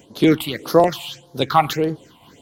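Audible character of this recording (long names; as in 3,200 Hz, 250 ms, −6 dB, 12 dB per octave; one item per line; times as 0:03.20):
phaser sweep stages 6, 1.7 Hz, lowest notch 420–2,500 Hz
amplitude modulation by smooth noise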